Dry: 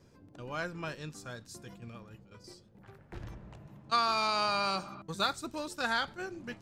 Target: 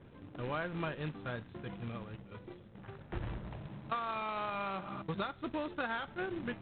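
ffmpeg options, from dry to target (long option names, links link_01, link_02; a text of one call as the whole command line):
ffmpeg -i in.wav -af "acompressor=threshold=-37dB:ratio=16,aresample=8000,acrusher=bits=2:mode=log:mix=0:aa=0.000001,aresample=44100,aemphasis=mode=reproduction:type=75kf,volume=5dB" out.wav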